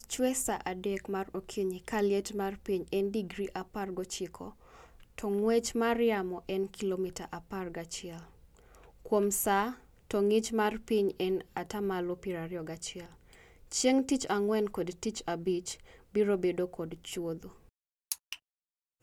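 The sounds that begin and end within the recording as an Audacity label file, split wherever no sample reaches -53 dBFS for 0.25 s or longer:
18.120000	18.360000	sound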